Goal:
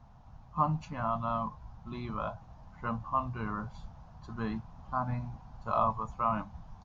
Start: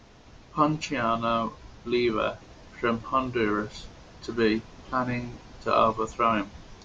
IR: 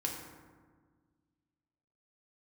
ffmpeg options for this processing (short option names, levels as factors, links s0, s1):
-af "firequalizer=gain_entry='entry(160,0);entry(360,-23);entry(790,0);entry(2000,-19)':delay=0.05:min_phase=1"